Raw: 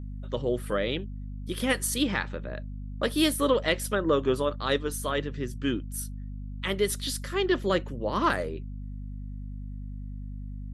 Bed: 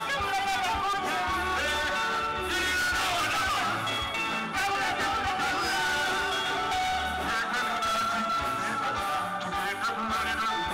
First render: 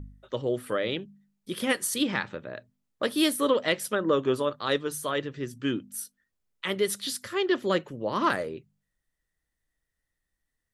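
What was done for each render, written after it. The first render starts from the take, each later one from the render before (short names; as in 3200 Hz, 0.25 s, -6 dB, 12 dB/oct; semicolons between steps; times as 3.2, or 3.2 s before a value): de-hum 50 Hz, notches 5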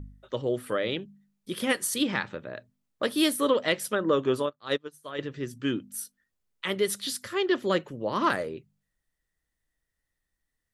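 4.46–5.19 upward expander 2.5:1, over -39 dBFS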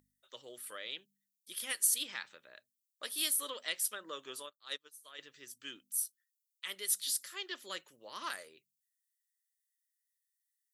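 differentiator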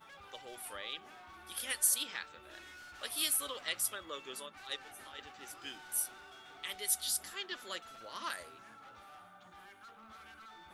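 add bed -25.5 dB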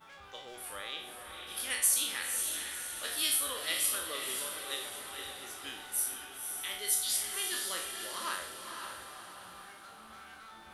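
spectral trails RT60 0.59 s; diffused feedback echo 0.522 s, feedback 49%, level -5.5 dB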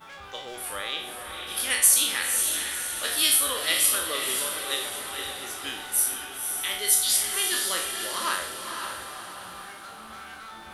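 gain +9 dB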